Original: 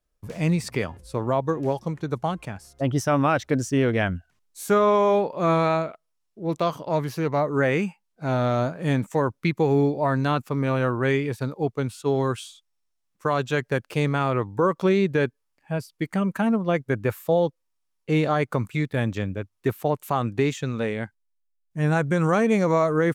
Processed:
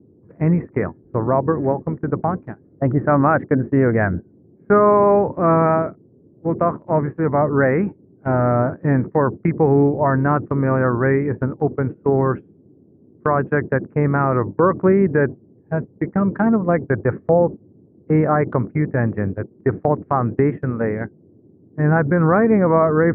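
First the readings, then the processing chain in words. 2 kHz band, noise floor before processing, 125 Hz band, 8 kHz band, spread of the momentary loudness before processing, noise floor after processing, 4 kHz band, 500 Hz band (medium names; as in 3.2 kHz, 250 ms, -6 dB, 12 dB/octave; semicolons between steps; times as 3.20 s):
+3.5 dB, -75 dBFS, +5.5 dB, under -40 dB, 10 LU, -52 dBFS, under -25 dB, +5.5 dB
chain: band noise 92–390 Hz -35 dBFS; steep low-pass 1.9 kHz 48 dB/octave; gate -28 dBFS, range -21 dB; trim +5.5 dB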